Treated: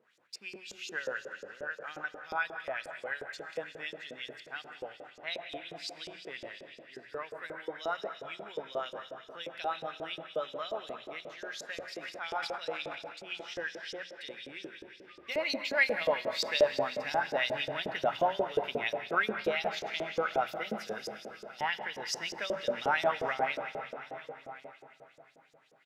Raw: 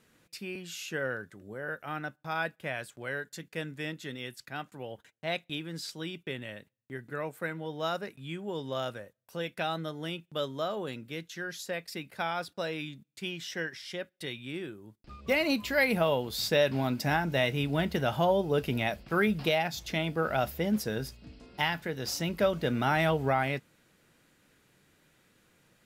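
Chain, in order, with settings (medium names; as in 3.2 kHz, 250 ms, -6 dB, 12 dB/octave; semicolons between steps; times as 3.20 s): delay 1147 ms -18 dB; reverberation RT60 3.8 s, pre-delay 70 ms, DRR 5 dB; 11.98–13.41 s: transient shaper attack -8 dB, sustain +11 dB; LFO band-pass saw up 5.6 Hz 430–6700 Hz; hum notches 60/120/180 Hz; trim +4 dB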